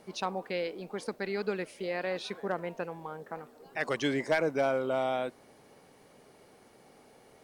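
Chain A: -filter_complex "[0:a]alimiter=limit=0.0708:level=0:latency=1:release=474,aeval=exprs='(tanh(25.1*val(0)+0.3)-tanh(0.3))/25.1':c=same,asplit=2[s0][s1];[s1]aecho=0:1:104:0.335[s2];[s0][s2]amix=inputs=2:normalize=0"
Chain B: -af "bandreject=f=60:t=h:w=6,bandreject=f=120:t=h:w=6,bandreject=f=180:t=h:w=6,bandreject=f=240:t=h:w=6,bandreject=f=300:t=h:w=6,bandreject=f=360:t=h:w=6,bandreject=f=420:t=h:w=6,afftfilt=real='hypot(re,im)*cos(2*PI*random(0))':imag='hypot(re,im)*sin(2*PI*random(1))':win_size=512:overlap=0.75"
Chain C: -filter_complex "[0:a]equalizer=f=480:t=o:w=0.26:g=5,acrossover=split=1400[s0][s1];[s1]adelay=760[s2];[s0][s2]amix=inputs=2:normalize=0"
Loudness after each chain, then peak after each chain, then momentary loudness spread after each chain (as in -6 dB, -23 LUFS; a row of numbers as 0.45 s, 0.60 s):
-38.0 LUFS, -39.5 LUFS, -33.0 LUFS; -24.5 dBFS, -20.5 dBFS, -17.0 dBFS; 10 LU, 12 LU, 15 LU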